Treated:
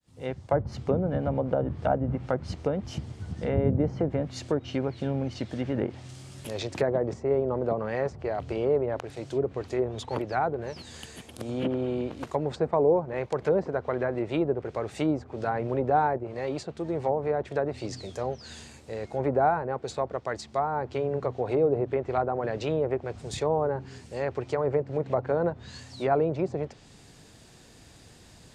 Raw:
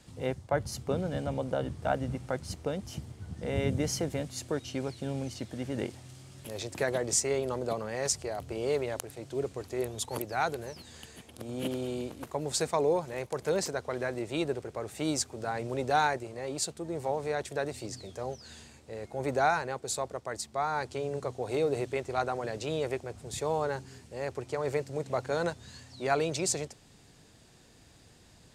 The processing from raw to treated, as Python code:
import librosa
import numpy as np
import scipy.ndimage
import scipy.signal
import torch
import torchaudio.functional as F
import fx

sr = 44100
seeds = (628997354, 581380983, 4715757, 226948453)

y = fx.fade_in_head(x, sr, length_s=0.59)
y = fx.env_lowpass_down(y, sr, base_hz=870.0, full_db=-27.0)
y = y * librosa.db_to_amplitude(5.5)